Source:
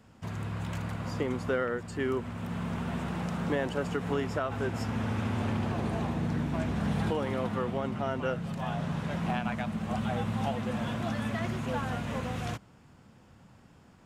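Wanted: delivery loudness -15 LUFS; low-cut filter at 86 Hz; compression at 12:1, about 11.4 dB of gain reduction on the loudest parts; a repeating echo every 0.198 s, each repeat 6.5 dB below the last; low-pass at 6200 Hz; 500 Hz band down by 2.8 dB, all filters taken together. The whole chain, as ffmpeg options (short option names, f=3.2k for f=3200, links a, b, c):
-af "highpass=86,lowpass=6.2k,equalizer=f=500:t=o:g=-3.5,acompressor=threshold=-39dB:ratio=12,aecho=1:1:198|396|594|792|990|1188:0.473|0.222|0.105|0.0491|0.0231|0.0109,volume=27.5dB"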